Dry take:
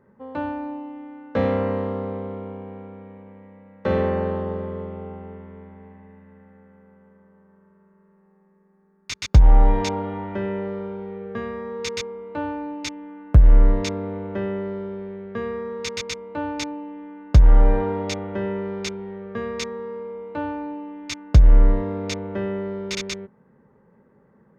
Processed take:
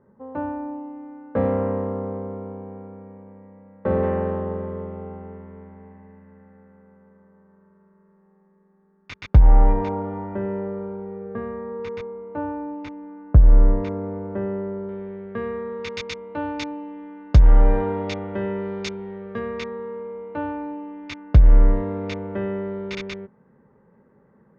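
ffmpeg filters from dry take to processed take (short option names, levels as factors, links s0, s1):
-af "asetnsamples=n=441:p=0,asendcmd='4.03 lowpass f 2000;9.73 lowpass f 1300;14.89 lowpass f 2700;15.89 lowpass f 4000;16.71 lowpass f 5800;17.4 lowpass f 3600;18.6 lowpass f 5400;19.39 lowpass f 2700',lowpass=1300"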